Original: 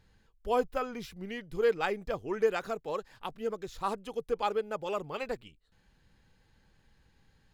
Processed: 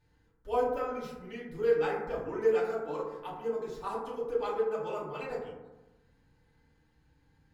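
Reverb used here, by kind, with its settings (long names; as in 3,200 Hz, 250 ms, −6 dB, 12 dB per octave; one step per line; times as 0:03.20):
feedback delay network reverb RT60 1.1 s, low-frequency decay 1.2×, high-frequency decay 0.3×, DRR −8 dB
level −11 dB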